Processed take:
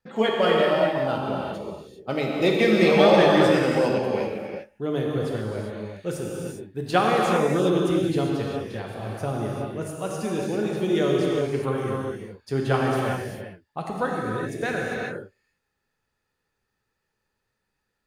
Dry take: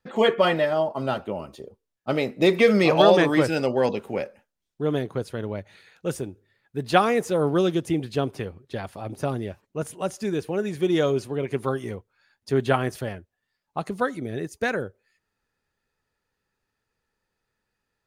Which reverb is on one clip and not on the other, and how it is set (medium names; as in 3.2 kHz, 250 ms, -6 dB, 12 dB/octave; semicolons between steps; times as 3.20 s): gated-style reverb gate 430 ms flat, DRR -2.5 dB; trim -3.5 dB